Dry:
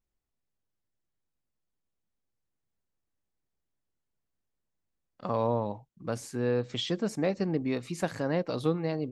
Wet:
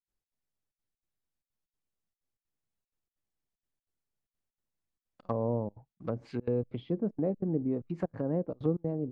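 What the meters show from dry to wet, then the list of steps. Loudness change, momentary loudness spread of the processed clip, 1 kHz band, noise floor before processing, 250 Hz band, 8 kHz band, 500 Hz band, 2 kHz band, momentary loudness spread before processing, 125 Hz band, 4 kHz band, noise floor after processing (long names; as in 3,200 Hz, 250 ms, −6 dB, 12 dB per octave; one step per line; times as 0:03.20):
−2.5 dB, 7 LU, −8.0 dB, −84 dBFS, −1.0 dB, below −25 dB, −3.0 dB, −16.5 dB, 8 LU, −0.5 dB, below −20 dB, below −85 dBFS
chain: gain on a spectral selection 0:06.25–0:06.92, 2,000–5,100 Hz +10 dB
gate pattern ".xx.xxxxx" 190 BPM −24 dB
in parallel at −3.5 dB: slack as between gear wheels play −44 dBFS
on the sum: treble cut that deepens with the level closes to 520 Hz, closed at −24.5 dBFS
level −4.5 dB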